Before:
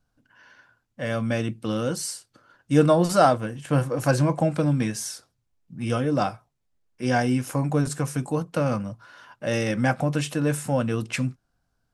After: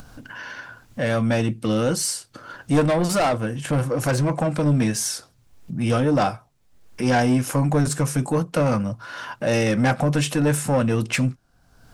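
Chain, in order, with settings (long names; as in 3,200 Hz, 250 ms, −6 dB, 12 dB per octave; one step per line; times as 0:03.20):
in parallel at +1.5 dB: upward compression, threshold −25 dBFS
on the sum: soft clipping −13 dBFS, distortion −10 dB
0:02.80–0:04.66: downward compressor 1.5 to 1, threshold −23 dBFS, peak gain reduction 3 dB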